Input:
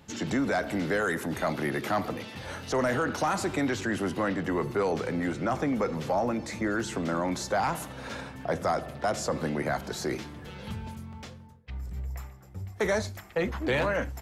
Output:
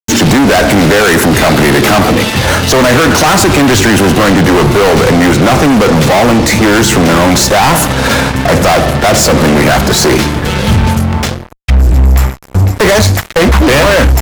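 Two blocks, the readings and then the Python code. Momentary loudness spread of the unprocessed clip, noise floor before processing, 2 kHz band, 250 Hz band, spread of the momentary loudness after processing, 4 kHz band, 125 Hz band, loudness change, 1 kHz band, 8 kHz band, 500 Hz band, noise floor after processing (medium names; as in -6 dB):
12 LU, -48 dBFS, +22.0 dB, +22.0 dB, 4 LU, +28.0 dB, +26.0 dB, +22.0 dB, +21.0 dB, +27.5 dB, +20.5 dB, -23 dBFS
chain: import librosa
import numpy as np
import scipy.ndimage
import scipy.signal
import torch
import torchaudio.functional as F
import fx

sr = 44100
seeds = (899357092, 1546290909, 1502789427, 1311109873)

y = fx.fuzz(x, sr, gain_db=40.0, gate_db=-46.0)
y = fx.low_shelf(y, sr, hz=82.0, db=5.0)
y = F.gain(torch.from_numpy(y), 7.5).numpy()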